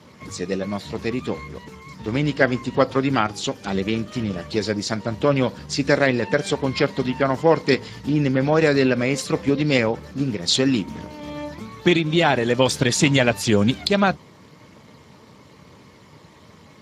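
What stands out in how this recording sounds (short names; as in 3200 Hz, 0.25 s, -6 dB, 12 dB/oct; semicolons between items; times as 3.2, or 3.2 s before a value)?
Speex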